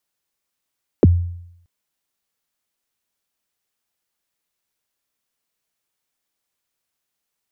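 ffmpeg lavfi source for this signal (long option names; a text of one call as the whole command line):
ffmpeg -f lavfi -i "aevalsrc='0.562*pow(10,-3*t/0.75)*sin(2*PI*(530*0.027/log(87/530)*(exp(log(87/530)*min(t,0.027)/0.027)-1)+87*max(t-0.027,0)))':duration=0.63:sample_rate=44100" out.wav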